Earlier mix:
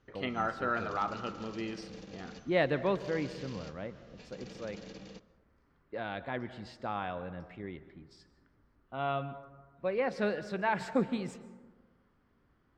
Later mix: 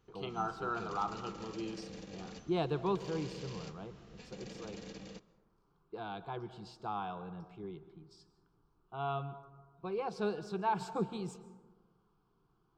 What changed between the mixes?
speech: add static phaser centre 380 Hz, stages 8; background: remove low-pass 6.6 kHz 24 dB/octave

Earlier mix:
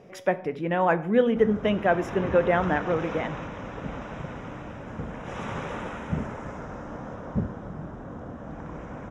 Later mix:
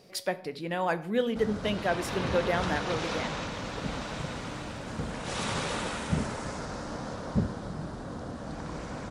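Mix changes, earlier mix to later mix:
speech -7.0 dB; master: remove boxcar filter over 10 samples

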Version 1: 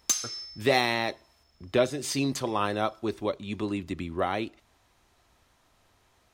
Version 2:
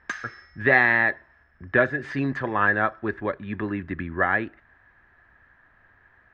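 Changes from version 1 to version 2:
speech: add tone controls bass +4 dB, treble -1 dB; master: add resonant low-pass 1.7 kHz, resonance Q 14

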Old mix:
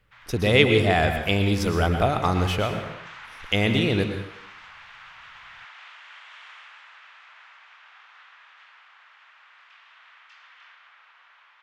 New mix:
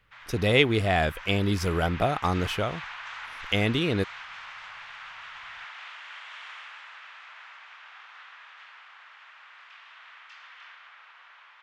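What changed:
background +3.0 dB; reverb: off

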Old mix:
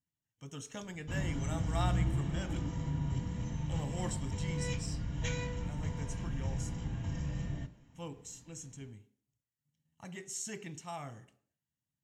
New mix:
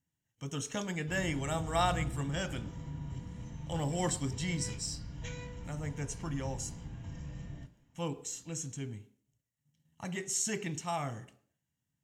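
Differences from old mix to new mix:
speech +7.5 dB; background -6.5 dB

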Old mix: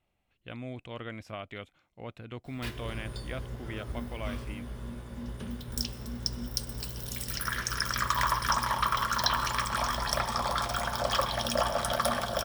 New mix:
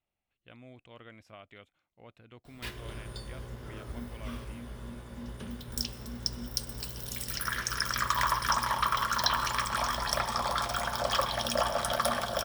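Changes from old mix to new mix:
speech -9.5 dB; master: add bass shelf 330 Hz -3.5 dB

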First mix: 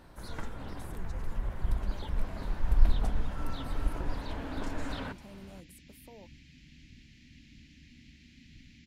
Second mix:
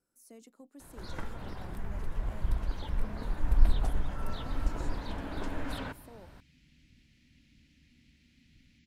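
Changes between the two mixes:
first sound: entry +0.80 s; second sound -8.0 dB

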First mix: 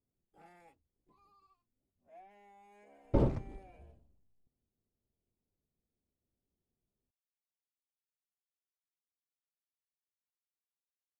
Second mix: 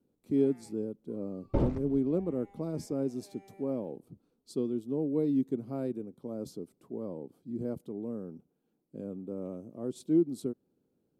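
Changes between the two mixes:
speech: unmuted; second sound: entry -1.60 s

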